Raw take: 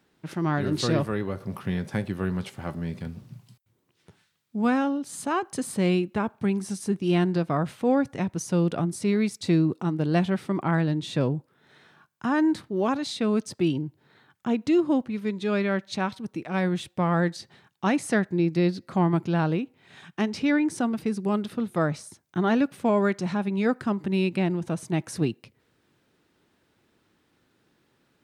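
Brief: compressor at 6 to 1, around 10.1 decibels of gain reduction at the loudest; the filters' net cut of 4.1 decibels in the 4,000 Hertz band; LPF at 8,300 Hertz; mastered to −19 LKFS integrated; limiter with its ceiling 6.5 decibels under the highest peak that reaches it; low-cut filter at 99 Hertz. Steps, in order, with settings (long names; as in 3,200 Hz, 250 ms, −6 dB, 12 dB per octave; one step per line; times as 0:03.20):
high-pass filter 99 Hz
low-pass filter 8,300 Hz
parametric band 4,000 Hz −5 dB
downward compressor 6 to 1, threshold −29 dBFS
level +16.5 dB
brickwall limiter −8 dBFS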